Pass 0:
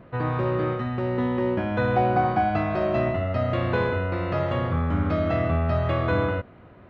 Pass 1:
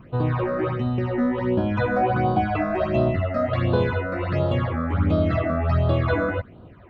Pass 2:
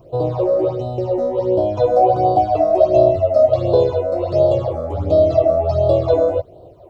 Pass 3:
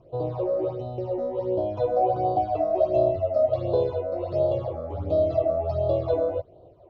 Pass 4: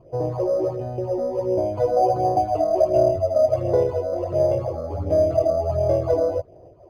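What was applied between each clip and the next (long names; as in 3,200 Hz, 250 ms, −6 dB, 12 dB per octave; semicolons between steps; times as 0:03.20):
all-pass phaser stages 8, 1.4 Hz, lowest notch 110–2,100 Hz; level +4 dB
drawn EQ curve 140 Hz 0 dB, 230 Hz −12 dB, 330 Hz +6 dB, 640 Hz +15 dB, 1,700 Hz −20 dB, 5,100 Hz +14 dB; level −1.5 dB
low-pass filter 4,000 Hz 12 dB per octave; level −9 dB
linearly interpolated sample-rate reduction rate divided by 8×; level +4 dB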